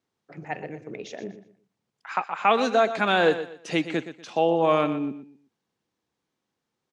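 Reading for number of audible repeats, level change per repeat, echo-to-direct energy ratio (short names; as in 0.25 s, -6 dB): 3, -11.0 dB, -11.5 dB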